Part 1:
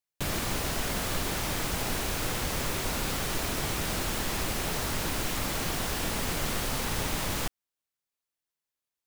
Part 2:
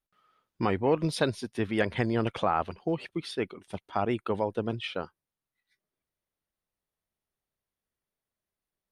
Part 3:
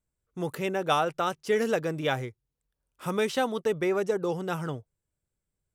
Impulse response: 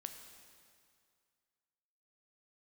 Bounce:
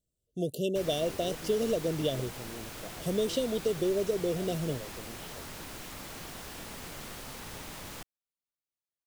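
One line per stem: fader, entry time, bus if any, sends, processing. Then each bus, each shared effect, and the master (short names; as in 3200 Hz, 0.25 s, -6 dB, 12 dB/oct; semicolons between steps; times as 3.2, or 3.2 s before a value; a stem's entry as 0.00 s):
-11.5 dB, 0.55 s, no bus, no send, dry
-16.5 dB, 0.40 s, bus A, no send, dry
+1.5 dB, 0.00 s, bus A, no send, dry
bus A: 0.0 dB, brick-wall FIR band-stop 730–2700 Hz; compressor, threshold -25 dBFS, peak gain reduction 6 dB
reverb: off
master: low shelf 72 Hz -6 dB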